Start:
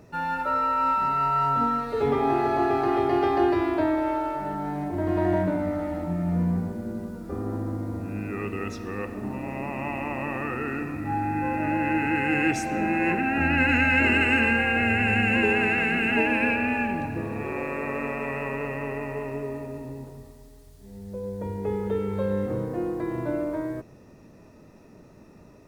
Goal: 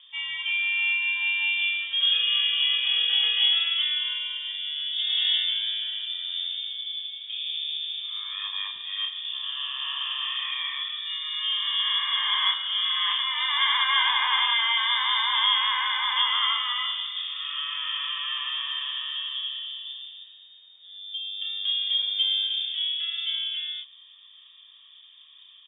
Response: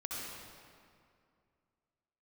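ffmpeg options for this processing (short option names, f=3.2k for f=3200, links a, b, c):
-filter_complex "[0:a]equalizer=f=530:w=3.8:g=10,asplit=2[a][b];[b]adelay=31,volume=-4.5dB[c];[a][c]amix=inputs=2:normalize=0,lowpass=f=3.1k:t=q:w=0.5098,lowpass=f=3.1k:t=q:w=0.6013,lowpass=f=3.1k:t=q:w=0.9,lowpass=f=3.1k:t=q:w=2.563,afreqshift=-3700,volume=-4dB"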